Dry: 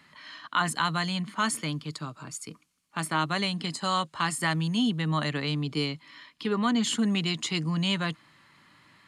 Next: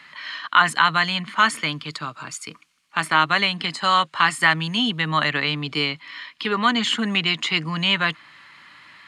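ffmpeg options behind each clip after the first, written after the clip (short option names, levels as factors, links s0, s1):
-filter_complex "[0:a]equalizer=f=2200:w=0.34:g=14.5,acrossover=split=3200[s0][s1];[s1]alimiter=limit=0.0891:level=0:latency=1:release=323[s2];[s0][s2]amix=inputs=2:normalize=0,volume=0.891"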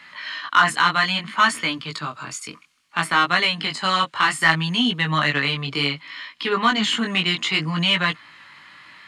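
-af "acontrast=35,flanger=delay=16.5:depth=5.7:speed=0.62,volume=0.891"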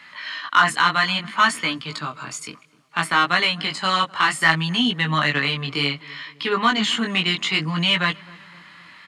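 -filter_complex "[0:a]asplit=2[s0][s1];[s1]adelay=257,lowpass=f=1300:p=1,volume=0.0841,asplit=2[s2][s3];[s3]adelay=257,lowpass=f=1300:p=1,volume=0.54,asplit=2[s4][s5];[s5]adelay=257,lowpass=f=1300:p=1,volume=0.54,asplit=2[s6][s7];[s7]adelay=257,lowpass=f=1300:p=1,volume=0.54[s8];[s0][s2][s4][s6][s8]amix=inputs=5:normalize=0"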